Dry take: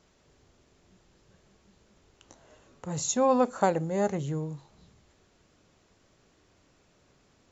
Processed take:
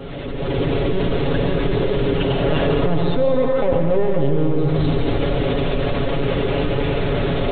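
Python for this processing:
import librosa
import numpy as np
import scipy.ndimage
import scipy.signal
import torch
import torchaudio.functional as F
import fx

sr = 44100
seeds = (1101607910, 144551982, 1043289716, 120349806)

p1 = fx.recorder_agc(x, sr, target_db=-14.0, rise_db_per_s=51.0, max_gain_db=30)
p2 = p1 + fx.echo_feedback(p1, sr, ms=93, feedback_pct=39, wet_db=-10.5, dry=0)
p3 = fx.leveller(p2, sr, passes=2)
p4 = np.clip(p3, -10.0 ** (-13.5 / 20.0), 10.0 ** (-13.5 / 20.0))
p5 = fx.peak_eq(p4, sr, hz=430.0, db=8.5, octaves=0.84)
p6 = fx.lpc_vocoder(p5, sr, seeds[0], excitation='pitch_kept', order=10)
p7 = fx.peak_eq(p6, sr, hz=1400.0, db=-4.5, octaves=1.8)
p8 = p7 + 0.7 * np.pad(p7, (int(7.2 * sr / 1000.0), 0))[:len(p7)]
p9 = fx.rev_plate(p8, sr, seeds[1], rt60_s=1.8, hf_ratio=0.6, predelay_ms=115, drr_db=3.0)
p10 = fx.env_flatten(p9, sr, amount_pct=70)
y = F.gain(torch.from_numpy(p10), -8.5).numpy()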